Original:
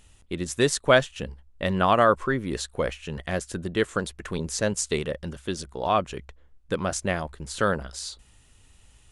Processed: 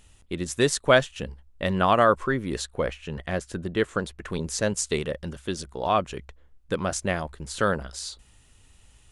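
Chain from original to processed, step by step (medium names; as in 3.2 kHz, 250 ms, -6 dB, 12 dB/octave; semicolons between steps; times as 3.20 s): 2.65–4.30 s: treble shelf 5 kHz -7.5 dB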